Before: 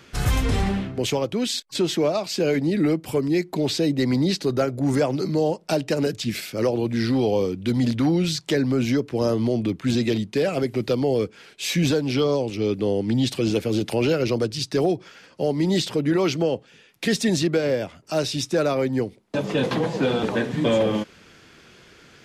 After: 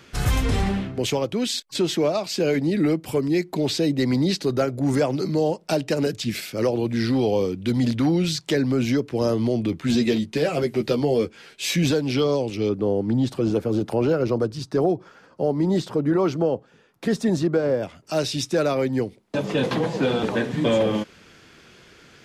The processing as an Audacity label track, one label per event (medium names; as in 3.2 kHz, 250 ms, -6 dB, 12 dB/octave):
9.710000	11.760000	doubling 13 ms -5.5 dB
12.690000	17.830000	resonant high shelf 1.7 kHz -9 dB, Q 1.5